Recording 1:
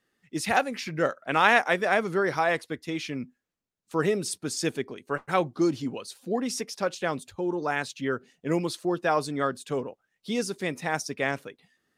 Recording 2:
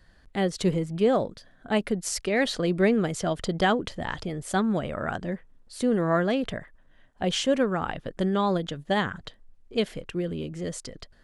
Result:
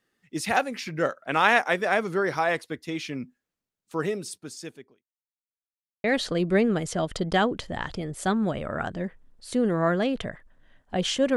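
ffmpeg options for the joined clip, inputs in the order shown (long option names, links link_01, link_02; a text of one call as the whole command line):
ffmpeg -i cue0.wav -i cue1.wav -filter_complex "[0:a]apad=whole_dur=11.36,atrim=end=11.36,asplit=2[link_01][link_02];[link_01]atrim=end=5.04,asetpts=PTS-STARTPTS,afade=type=out:start_time=3.65:duration=1.39[link_03];[link_02]atrim=start=5.04:end=6.04,asetpts=PTS-STARTPTS,volume=0[link_04];[1:a]atrim=start=2.32:end=7.64,asetpts=PTS-STARTPTS,afade=type=in:duration=0.004:curve=hsin[link_05];[link_03][link_04][link_05]concat=n=3:v=0:a=1" out.wav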